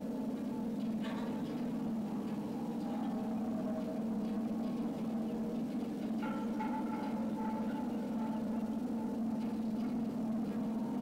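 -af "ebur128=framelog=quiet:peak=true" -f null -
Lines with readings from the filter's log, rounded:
Integrated loudness:
  I:         -37.8 LUFS
  Threshold: -47.8 LUFS
Loudness range:
  LRA:         0.9 LU
  Threshold: -57.8 LUFS
  LRA low:   -38.3 LUFS
  LRA high:  -37.4 LUFS
True peak:
  Peak:      -32.0 dBFS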